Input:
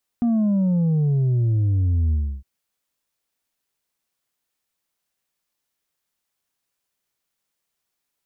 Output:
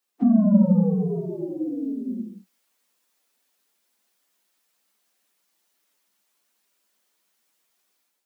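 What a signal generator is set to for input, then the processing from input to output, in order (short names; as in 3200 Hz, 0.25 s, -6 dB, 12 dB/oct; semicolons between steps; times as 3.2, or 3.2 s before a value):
sub drop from 240 Hz, over 2.21 s, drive 3.5 dB, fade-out 0.31 s, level -17 dB
phase scrambler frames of 50 ms; steep high-pass 180 Hz 96 dB/oct; AGC gain up to 8 dB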